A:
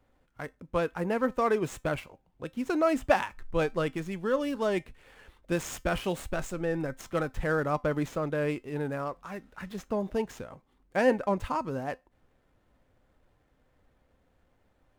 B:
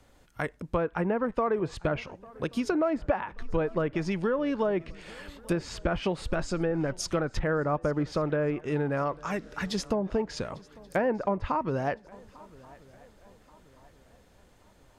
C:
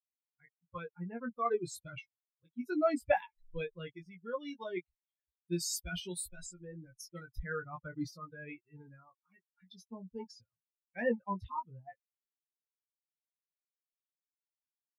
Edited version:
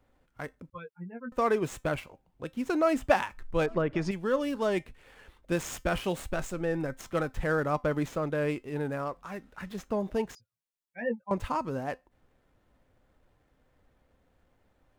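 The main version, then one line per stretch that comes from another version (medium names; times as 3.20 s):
A
0.70–1.32 s: from C
3.66–4.11 s: from B
10.35–11.31 s: from C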